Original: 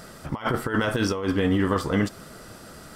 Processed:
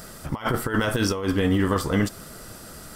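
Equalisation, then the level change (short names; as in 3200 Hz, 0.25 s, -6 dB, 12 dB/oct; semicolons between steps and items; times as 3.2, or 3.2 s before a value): low shelf 65 Hz +8 dB; high shelf 7400 Hz +11 dB; 0.0 dB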